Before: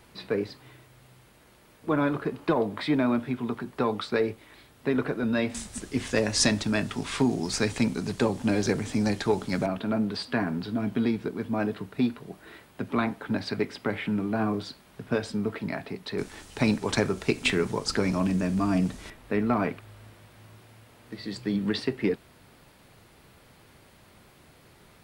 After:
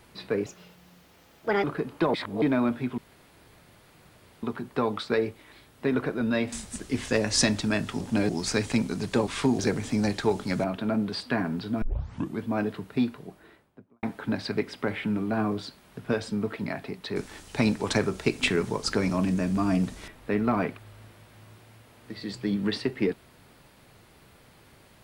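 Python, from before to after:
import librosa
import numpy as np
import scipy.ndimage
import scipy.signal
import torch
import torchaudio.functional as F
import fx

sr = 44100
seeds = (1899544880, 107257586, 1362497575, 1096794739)

y = fx.studio_fade_out(x, sr, start_s=12.06, length_s=0.99)
y = fx.edit(y, sr, fx.speed_span(start_s=0.46, length_s=1.65, speed=1.4),
    fx.reverse_span(start_s=2.61, length_s=0.28),
    fx.insert_room_tone(at_s=3.45, length_s=1.45),
    fx.swap(start_s=7.03, length_s=0.32, other_s=8.33, other_length_s=0.28),
    fx.tape_start(start_s=10.84, length_s=0.58), tone=tone)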